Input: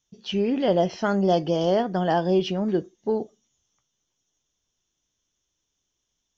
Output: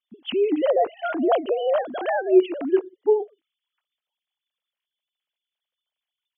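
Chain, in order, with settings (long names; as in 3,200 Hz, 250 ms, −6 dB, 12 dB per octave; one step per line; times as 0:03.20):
three sine waves on the formant tracks
0:01.42–0:02.27: dynamic equaliser 870 Hz, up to −4 dB, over −39 dBFS, Q 4.2
level +1.5 dB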